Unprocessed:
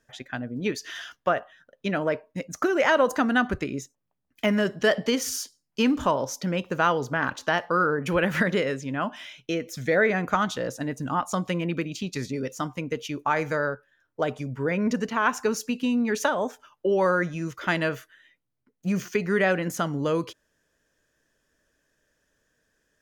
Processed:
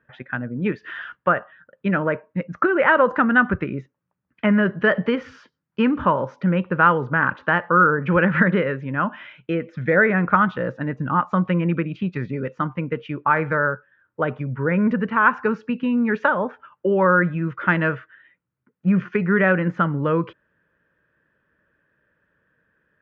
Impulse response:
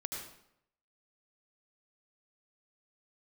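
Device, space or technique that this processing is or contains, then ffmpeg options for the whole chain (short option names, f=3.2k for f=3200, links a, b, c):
bass cabinet: -af "highpass=79,equalizer=f=180:t=q:w=4:g=3,equalizer=f=270:t=q:w=4:g=-6,equalizer=f=420:t=q:w=4:g=-4,equalizer=f=700:t=q:w=4:g=-10,equalizer=f=1.4k:t=q:w=4:g=3,equalizer=f=2.1k:t=q:w=4:g=-3,lowpass=f=2.2k:w=0.5412,lowpass=f=2.2k:w=1.3066,volume=7dB"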